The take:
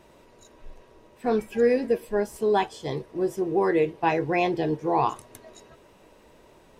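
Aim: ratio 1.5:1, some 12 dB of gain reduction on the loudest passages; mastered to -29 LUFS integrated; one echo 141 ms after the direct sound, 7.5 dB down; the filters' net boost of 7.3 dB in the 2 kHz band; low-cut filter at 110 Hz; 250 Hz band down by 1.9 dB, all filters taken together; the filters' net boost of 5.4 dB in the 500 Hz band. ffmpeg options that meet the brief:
-af "highpass=110,equalizer=f=250:t=o:g=-8.5,equalizer=f=500:t=o:g=8.5,equalizer=f=2000:t=o:g=8.5,acompressor=threshold=0.00501:ratio=1.5,aecho=1:1:141:0.422,volume=1.26"

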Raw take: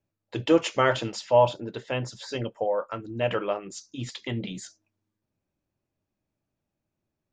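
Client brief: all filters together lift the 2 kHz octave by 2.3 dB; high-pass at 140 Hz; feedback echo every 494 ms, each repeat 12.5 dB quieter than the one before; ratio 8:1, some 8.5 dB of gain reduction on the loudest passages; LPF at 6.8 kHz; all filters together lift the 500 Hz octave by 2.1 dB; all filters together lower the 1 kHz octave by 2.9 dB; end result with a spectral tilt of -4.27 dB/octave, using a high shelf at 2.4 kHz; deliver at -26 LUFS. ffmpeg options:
-af "highpass=140,lowpass=6800,equalizer=f=500:t=o:g=4,equalizer=f=1000:t=o:g=-6.5,equalizer=f=2000:t=o:g=3,highshelf=f=2400:g=4,acompressor=threshold=0.0891:ratio=8,aecho=1:1:494|988|1482:0.237|0.0569|0.0137,volume=1.58"

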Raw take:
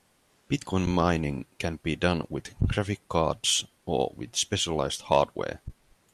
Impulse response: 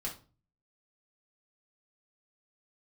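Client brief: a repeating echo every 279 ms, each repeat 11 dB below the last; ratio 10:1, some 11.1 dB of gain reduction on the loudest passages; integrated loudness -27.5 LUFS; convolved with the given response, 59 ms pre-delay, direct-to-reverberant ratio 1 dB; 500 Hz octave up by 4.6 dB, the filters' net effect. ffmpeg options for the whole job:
-filter_complex "[0:a]equalizer=f=500:t=o:g=5.5,acompressor=threshold=0.0631:ratio=10,aecho=1:1:279|558|837:0.282|0.0789|0.0221,asplit=2[s0][s1];[1:a]atrim=start_sample=2205,adelay=59[s2];[s1][s2]afir=irnorm=-1:irlink=0,volume=0.794[s3];[s0][s3]amix=inputs=2:normalize=0,volume=1.12"

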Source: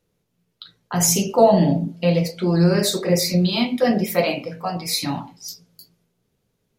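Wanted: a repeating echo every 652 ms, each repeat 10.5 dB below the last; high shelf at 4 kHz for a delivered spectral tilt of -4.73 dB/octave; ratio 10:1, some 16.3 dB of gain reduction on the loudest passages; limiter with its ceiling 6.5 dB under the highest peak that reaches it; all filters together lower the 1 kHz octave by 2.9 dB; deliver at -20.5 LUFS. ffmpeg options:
-af "equalizer=f=1000:t=o:g=-4.5,highshelf=f=4000:g=-4,acompressor=threshold=0.0398:ratio=10,alimiter=limit=0.0668:level=0:latency=1,aecho=1:1:652|1304|1956:0.299|0.0896|0.0269,volume=4.47"

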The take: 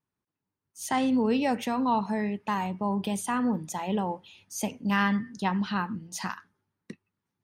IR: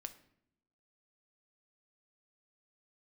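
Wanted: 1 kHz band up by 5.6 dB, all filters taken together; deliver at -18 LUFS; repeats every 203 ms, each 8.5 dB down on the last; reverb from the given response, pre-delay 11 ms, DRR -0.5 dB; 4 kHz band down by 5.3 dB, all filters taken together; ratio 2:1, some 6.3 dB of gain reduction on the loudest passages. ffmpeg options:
-filter_complex "[0:a]equalizer=f=1000:t=o:g=7,equalizer=f=4000:t=o:g=-8.5,acompressor=threshold=0.0398:ratio=2,aecho=1:1:203|406|609|812:0.376|0.143|0.0543|0.0206,asplit=2[s0][s1];[1:a]atrim=start_sample=2205,adelay=11[s2];[s1][s2]afir=irnorm=-1:irlink=0,volume=1.68[s3];[s0][s3]amix=inputs=2:normalize=0,volume=2.66"

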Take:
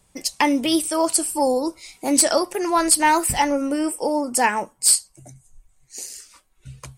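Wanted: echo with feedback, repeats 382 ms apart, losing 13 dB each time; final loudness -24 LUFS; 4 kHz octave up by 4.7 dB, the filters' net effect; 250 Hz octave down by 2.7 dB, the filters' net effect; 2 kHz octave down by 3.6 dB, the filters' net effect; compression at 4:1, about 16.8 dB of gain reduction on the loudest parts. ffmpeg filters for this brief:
-af "equalizer=f=250:t=o:g=-3.5,equalizer=f=2000:t=o:g=-6,equalizer=f=4000:t=o:g=7.5,acompressor=threshold=0.0282:ratio=4,aecho=1:1:382|764|1146:0.224|0.0493|0.0108,volume=2.51"

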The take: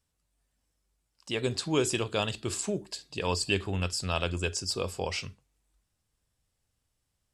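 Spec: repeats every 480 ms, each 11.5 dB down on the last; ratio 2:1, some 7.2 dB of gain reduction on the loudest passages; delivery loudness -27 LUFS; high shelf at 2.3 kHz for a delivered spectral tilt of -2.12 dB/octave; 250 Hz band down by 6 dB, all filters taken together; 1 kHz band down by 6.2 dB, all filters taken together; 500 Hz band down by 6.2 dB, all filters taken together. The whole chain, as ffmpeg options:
-af "equalizer=f=250:t=o:g=-7,equalizer=f=500:t=o:g=-4,equalizer=f=1000:t=o:g=-8,highshelf=f=2300:g=7,acompressor=threshold=0.0178:ratio=2,aecho=1:1:480|960|1440:0.266|0.0718|0.0194,volume=2.24"

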